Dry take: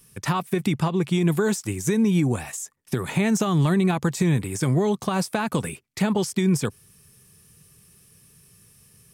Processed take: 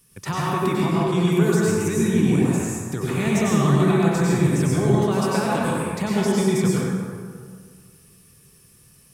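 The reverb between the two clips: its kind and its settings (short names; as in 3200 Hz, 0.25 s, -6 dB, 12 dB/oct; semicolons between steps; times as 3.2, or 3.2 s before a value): plate-style reverb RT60 1.9 s, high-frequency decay 0.5×, pre-delay 85 ms, DRR -6 dB; gain -4 dB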